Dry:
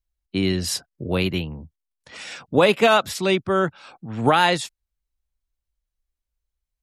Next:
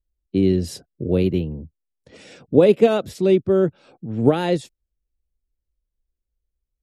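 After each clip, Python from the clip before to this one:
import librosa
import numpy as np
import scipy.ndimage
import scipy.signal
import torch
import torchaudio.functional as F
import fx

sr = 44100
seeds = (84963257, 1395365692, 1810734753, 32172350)

y = fx.low_shelf_res(x, sr, hz=670.0, db=13.0, q=1.5)
y = y * 10.0 ** (-10.0 / 20.0)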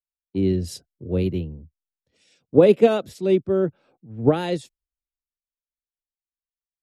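y = fx.band_widen(x, sr, depth_pct=70)
y = y * 10.0 ** (-4.0 / 20.0)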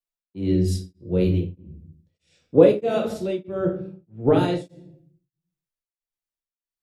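y = fx.room_shoebox(x, sr, seeds[0], volume_m3=86.0, walls='mixed', distance_m=0.78)
y = y * np.abs(np.cos(np.pi * 1.6 * np.arange(len(y)) / sr))
y = y * 10.0 ** (-1.0 / 20.0)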